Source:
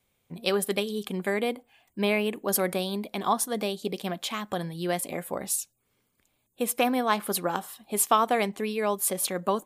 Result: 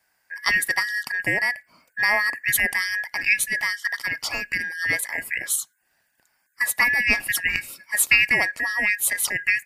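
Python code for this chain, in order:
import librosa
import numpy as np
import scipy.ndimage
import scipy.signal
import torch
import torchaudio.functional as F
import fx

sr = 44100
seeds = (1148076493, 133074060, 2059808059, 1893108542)

y = fx.band_shuffle(x, sr, order='2143')
y = F.gain(torch.from_numpy(y), 4.5).numpy()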